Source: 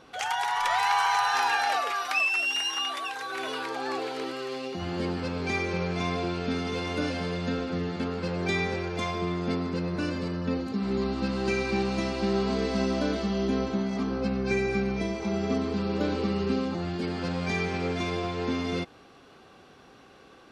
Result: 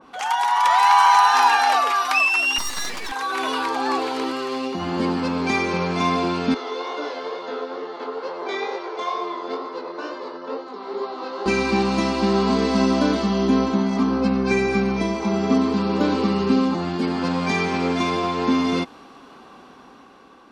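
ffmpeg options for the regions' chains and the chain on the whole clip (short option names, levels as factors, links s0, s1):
-filter_complex "[0:a]asettb=1/sr,asplit=3[s0][s1][s2];[s0]atrim=end=2.584[s3];[s1]atrim=start=2.58:end=3.12,asetpts=PTS-STARTPTS,afade=t=in:d=0.004:c=qsin,afade=t=out:st=0.536:d=0.004:c=qsin,highpass=f=450:w=0.5412,highpass=f=450:w=1.3066,highshelf=f=6400:g=-8.5,aeval=exprs='abs(val(0))':c=same[s4];[s2]atrim=start=3.116[s5];[s3][s4]acrossfade=d=0.004:c1=hsin:c2=qsin[s6];[s6][s5]acrossfade=d=0.004:c1=qsin:c2=hsin,asettb=1/sr,asplit=3[s7][s8][s9];[s7]atrim=end=6.544[s10];[s8]atrim=start=6.54:end=11.46,asetpts=PTS-STARTPTS,afade=t=in:d=0.004:c=qsin,afade=t=out:st=4.916:d=0.004:c=qsin,flanger=delay=16.5:depth=7:speed=2.2,highpass=f=420:w=0.5412,highpass=f=420:w=1.3066,equalizer=f=430:t=q:w=4:g=5,equalizer=f=1700:t=q:w=4:g=-3,equalizer=f=2500:t=q:w=4:g=-8,equalizer=f=4900:t=q:w=4:g=-4,lowpass=f=5700:w=0.5412,lowpass=f=5700:w=1.3066[s11];[s9]atrim=start=11.456[s12];[s10][s11]acrossfade=d=0.004:c1=hsin:c2=qsin[s13];[s13][s12]acrossfade=d=0.004:c1=qsin:c2=hsin,equalizer=f=100:t=o:w=0.67:g=-9,equalizer=f=250:t=o:w=0.67:g=8,equalizer=f=1000:t=o:w=0.67:g=10,dynaudnorm=f=170:g=9:m=1.58,adynamicequalizer=threshold=0.0251:dfrequency=2400:dqfactor=0.7:tfrequency=2400:tqfactor=0.7:attack=5:release=100:ratio=0.375:range=2:mode=boostabove:tftype=highshelf"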